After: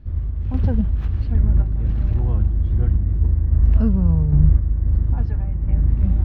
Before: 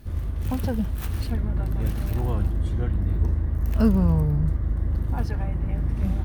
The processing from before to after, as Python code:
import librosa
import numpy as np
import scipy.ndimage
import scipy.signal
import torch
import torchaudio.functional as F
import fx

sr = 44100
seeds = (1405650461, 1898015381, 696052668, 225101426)

y = fx.low_shelf(x, sr, hz=180.0, db=12.0)
y = fx.tremolo_random(y, sr, seeds[0], hz=3.7, depth_pct=55)
y = fx.air_absorb(y, sr, metres=230.0)